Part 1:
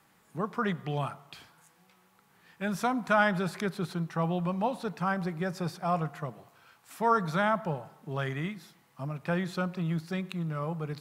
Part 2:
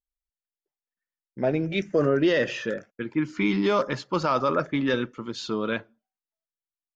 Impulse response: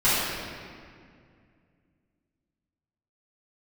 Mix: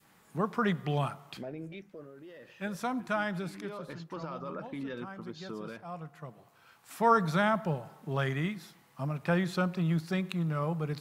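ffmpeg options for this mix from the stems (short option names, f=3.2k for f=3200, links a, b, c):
-filter_complex "[0:a]adynamicequalizer=threshold=0.00891:dfrequency=970:dqfactor=0.8:tfrequency=970:tqfactor=0.8:attack=5:release=100:ratio=0.375:range=3:mode=cutabove:tftype=bell,volume=2dB[a];[1:a]highshelf=f=4.4k:g=-9.5,alimiter=limit=-21dB:level=0:latency=1:release=80,volume=2dB,afade=t=out:st=1.38:d=0.75:silence=0.251189,afade=t=in:st=3.49:d=0.47:silence=0.266073,asplit=2[b][c];[c]apad=whole_len=485517[d];[a][d]sidechaincompress=threshold=-54dB:ratio=5:attack=5.4:release=921[e];[e][b]amix=inputs=2:normalize=0"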